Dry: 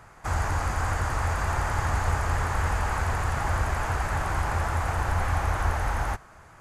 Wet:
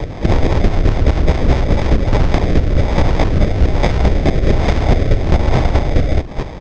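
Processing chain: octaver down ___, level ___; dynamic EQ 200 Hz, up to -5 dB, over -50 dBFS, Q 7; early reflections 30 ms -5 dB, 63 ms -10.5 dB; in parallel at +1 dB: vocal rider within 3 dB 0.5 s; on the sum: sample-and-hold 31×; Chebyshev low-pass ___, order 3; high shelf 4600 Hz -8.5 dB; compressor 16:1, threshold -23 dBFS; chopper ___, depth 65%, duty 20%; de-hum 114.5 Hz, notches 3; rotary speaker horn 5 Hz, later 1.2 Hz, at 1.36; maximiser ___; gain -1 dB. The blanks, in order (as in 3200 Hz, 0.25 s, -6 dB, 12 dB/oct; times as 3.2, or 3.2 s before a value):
2 oct, +4 dB, 5900 Hz, 4.7 Hz, +25 dB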